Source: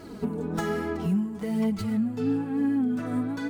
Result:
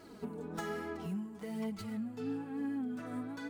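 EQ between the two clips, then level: low shelf 300 Hz -7.5 dB; -8.0 dB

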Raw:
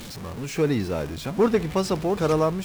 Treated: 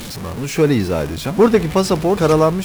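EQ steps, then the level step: bell 11000 Hz +3.5 dB 0.47 oct; +8.0 dB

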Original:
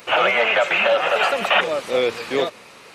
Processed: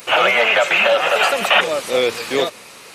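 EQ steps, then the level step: high shelf 5600 Hz +12 dB; +2.0 dB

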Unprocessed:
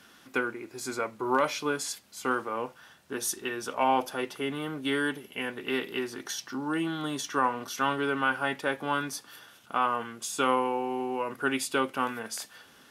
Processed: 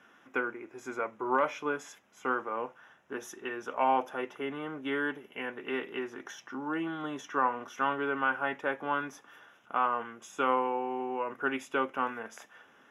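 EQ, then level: running mean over 10 samples; low shelf 140 Hz -11 dB; low shelf 320 Hz -4 dB; 0.0 dB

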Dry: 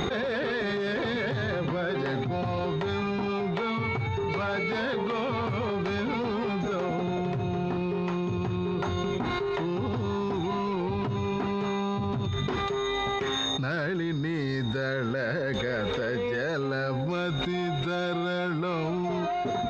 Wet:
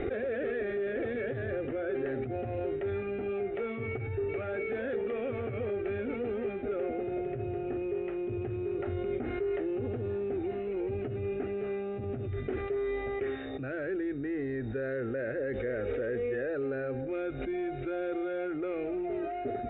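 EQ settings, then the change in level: steep low-pass 2900 Hz 36 dB/oct; air absorption 470 m; fixed phaser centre 410 Hz, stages 4; 0.0 dB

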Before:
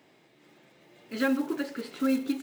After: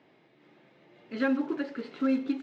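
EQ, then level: HPF 78 Hz; air absorption 210 m; 0.0 dB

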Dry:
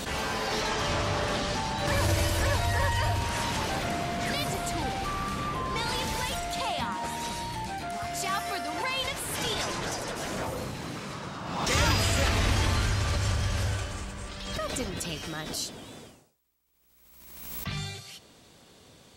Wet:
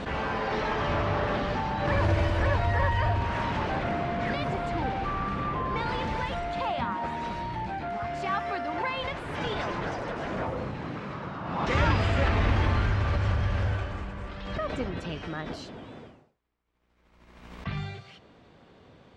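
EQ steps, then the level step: LPF 2100 Hz 12 dB/oct; +2.0 dB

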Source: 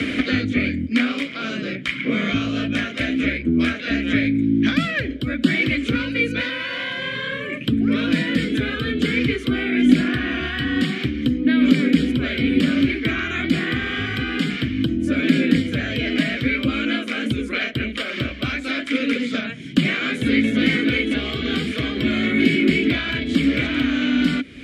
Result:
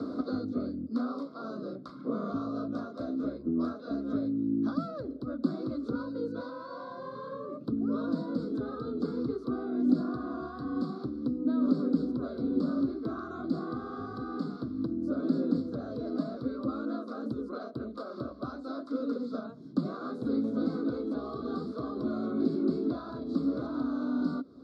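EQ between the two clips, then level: HPF 790 Hz 6 dB/oct; elliptic band-stop 1200–4500 Hz, stop band 40 dB; air absorption 390 m; 0.0 dB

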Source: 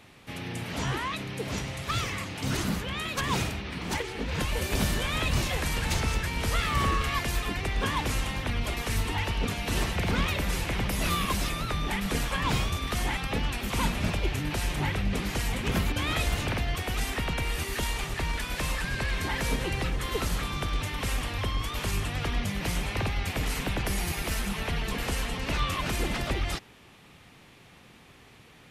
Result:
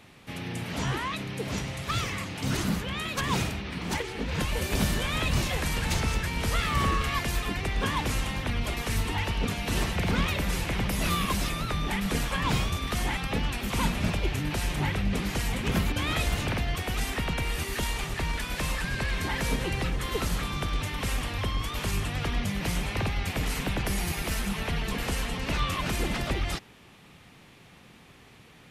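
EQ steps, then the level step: bell 180 Hz +2.5 dB 0.8 oct; 0.0 dB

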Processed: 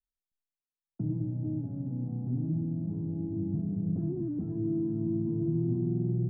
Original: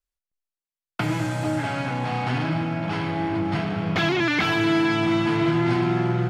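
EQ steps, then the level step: ladder low-pass 330 Hz, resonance 25%; 0.0 dB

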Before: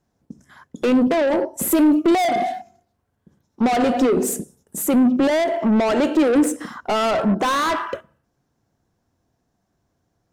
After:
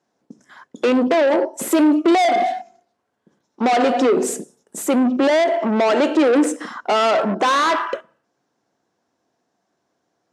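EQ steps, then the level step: BPF 310–7400 Hz; +3.5 dB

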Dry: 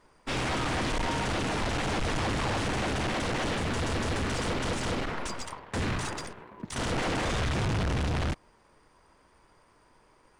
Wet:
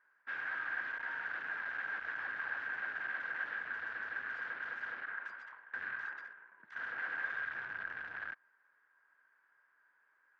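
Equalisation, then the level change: band-pass 1600 Hz, Q 16; air absorption 140 m; +8.0 dB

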